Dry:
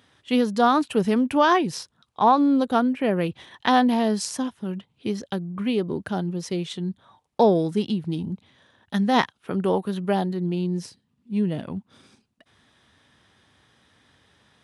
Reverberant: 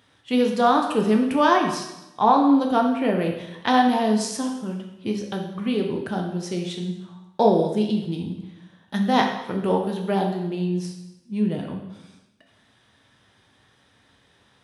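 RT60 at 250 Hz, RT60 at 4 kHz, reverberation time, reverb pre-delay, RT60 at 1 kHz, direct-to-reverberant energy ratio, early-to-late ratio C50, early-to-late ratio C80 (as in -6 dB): 1.0 s, 0.90 s, 0.95 s, 6 ms, 0.95 s, 1.5 dB, 5.5 dB, 8.0 dB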